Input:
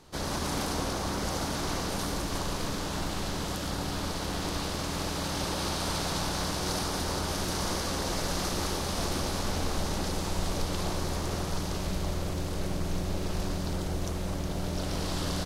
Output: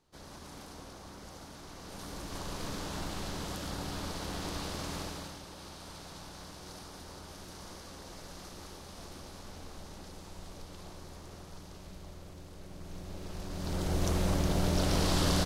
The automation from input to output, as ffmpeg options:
ffmpeg -i in.wav -af "volume=14.5dB,afade=type=in:start_time=1.75:duration=1:silence=0.266073,afade=type=out:start_time=4.93:duration=0.48:silence=0.281838,afade=type=in:start_time=12.66:duration=0.84:silence=0.421697,afade=type=in:start_time=13.5:duration=0.65:silence=0.237137" out.wav

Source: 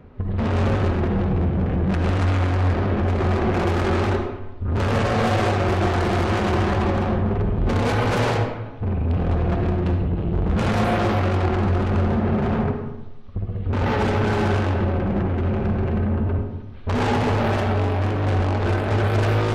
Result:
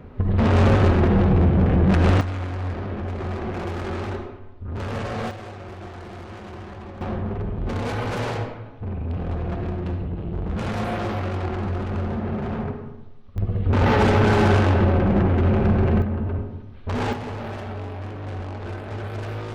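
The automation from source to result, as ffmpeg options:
ffmpeg -i in.wav -af "asetnsamples=nb_out_samples=441:pad=0,asendcmd='2.21 volume volume -8dB;5.31 volume volume -17dB;7.01 volume volume -6dB;13.38 volume volume 3.5dB;16.02 volume volume -3.5dB;17.13 volume volume -11dB',volume=4dB" out.wav

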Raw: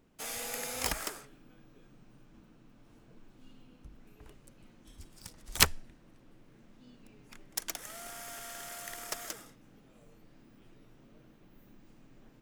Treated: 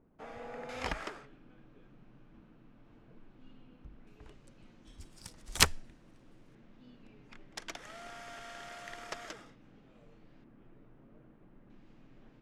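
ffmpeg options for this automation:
ffmpeg -i in.wav -af "asetnsamples=nb_out_samples=441:pad=0,asendcmd='0.69 lowpass f 2900;4.07 lowpass f 6100;5 lowpass f 10000;6.55 lowpass f 3800;10.44 lowpass f 1700;11.7 lowpass f 3900',lowpass=1200" out.wav

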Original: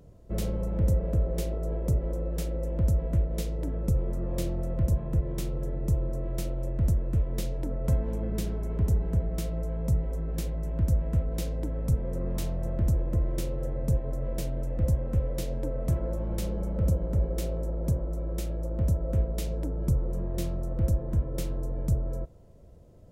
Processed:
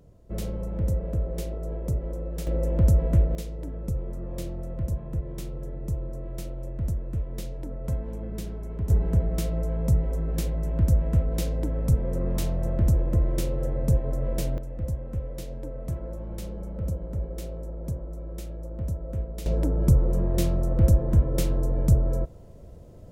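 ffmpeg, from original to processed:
ffmpeg -i in.wav -af "asetnsamples=nb_out_samples=441:pad=0,asendcmd='2.47 volume volume 5.5dB;3.35 volume volume -3.5dB;8.9 volume volume 4dB;14.58 volume volume -4.5dB;19.46 volume volume 7dB',volume=-1.5dB" out.wav

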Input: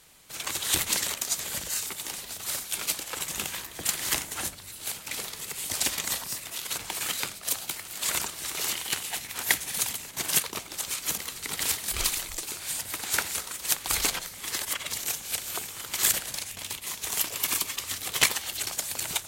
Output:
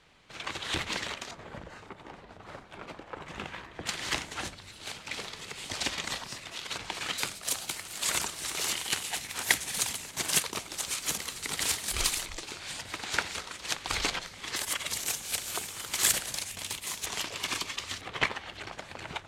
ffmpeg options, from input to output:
ffmpeg -i in.wav -af "asetnsamples=nb_out_samples=441:pad=0,asendcmd='1.31 lowpass f 1200;3.26 lowpass f 2000;3.87 lowpass f 4600;7.18 lowpass f 9900;12.26 lowpass f 4700;14.56 lowpass f 11000;17.06 lowpass f 5000;18.01 lowpass f 2100',lowpass=3200" out.wav

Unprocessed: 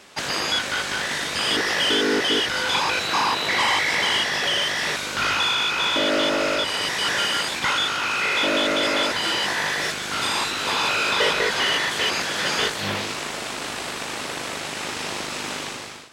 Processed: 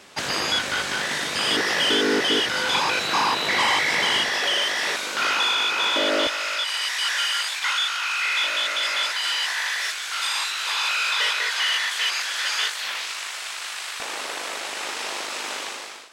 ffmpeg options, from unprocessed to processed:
ffmpeg -i in.wav -af "asetnsamples=nb_out_samples=441:pad=0,asendcmd='0.91 highpass f 110;4.29 highpass f 310;6.27 highpass f 1300;14 highpass f 470',highpass=40" out.wav

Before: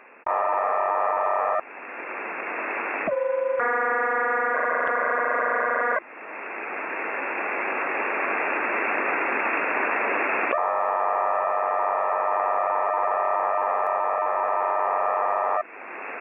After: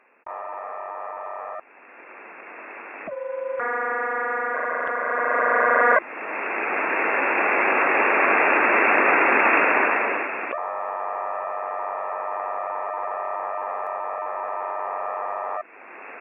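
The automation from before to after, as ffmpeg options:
ffmpeg -i in.wav -af "volume=7dB,afade=type=in:start_time=2.94:duration=0.8:silence=0.398107,afade=type=in:start_time=5.04:duration=0.87:silence=0.354813,afade=type=out:start_time=9.61:duration=0.7:silence=0.251189" out.wav

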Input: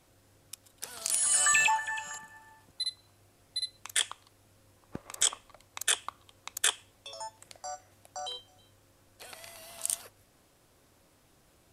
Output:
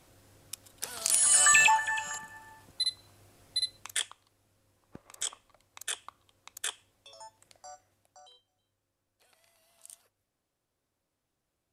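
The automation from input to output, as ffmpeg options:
ffmpeg -i in.wav -af "volume=3.5dB,afade=type=out:start_time=3.63:duration=0.48:silence=0.266073,afade=type=out:start_time=7.68:duration=0.61:silence=0.281838" out.wav

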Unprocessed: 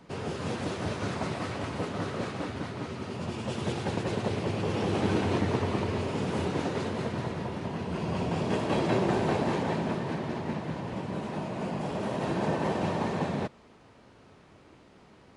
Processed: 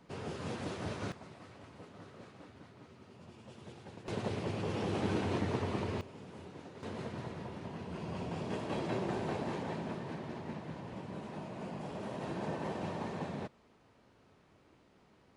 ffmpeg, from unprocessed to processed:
ffmpeg -i in.wav -af "asetnsamples=nb_out_samples=441:pad=0,asendcmd='1.12 volume volume -19.5dB;4.08 volume volume -6.5dB;6.01 volume volume -19.5dB;6.83 volume volume -9.5dB',volume=-7dB" out.wav

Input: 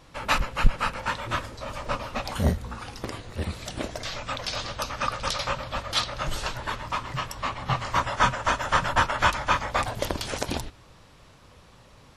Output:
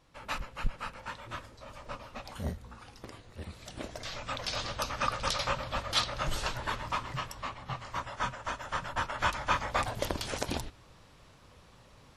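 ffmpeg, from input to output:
ffmpeg -i in.wav -af "volume=4.5dB,afade=type=in:start_time=3.51:duration=1.15:silence=0.334965,afade=type=out:start_time=6.85:duration=0.83:silence=0.354813,afade=type=in:start_time=8.93:duration=0.72:silence=0.421697" out.wav

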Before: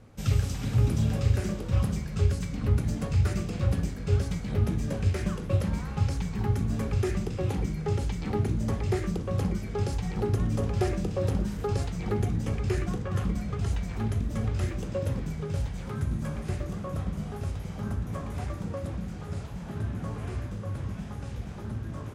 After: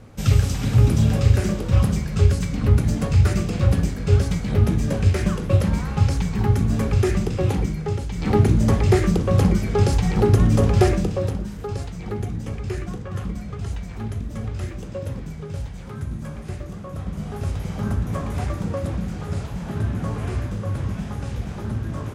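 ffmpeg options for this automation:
ffmpeg -i in.wav -af "volume=27dB,afade=type=out:start_time=7.48:duration=0.61:silence=0.398107,afade=type=in:start_time=8.09:duration=0.23:silence=0.281838,afade=type=out:start_time=10.78:duration=0.59:silence=0.281838,afade=type=in:start_time=16.94:duration=0.7:silence=0.398107" out.wav

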